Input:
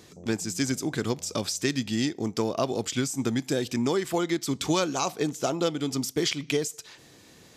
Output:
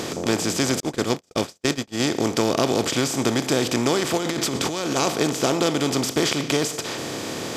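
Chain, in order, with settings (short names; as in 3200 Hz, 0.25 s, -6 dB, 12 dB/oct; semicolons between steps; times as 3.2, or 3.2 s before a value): per-bin compression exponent 0.4; 0.8–2 gate -20 dBFS, range -49 dB; 4.17–4.96 negative-ratio compressor -25 dBFS, ratio -1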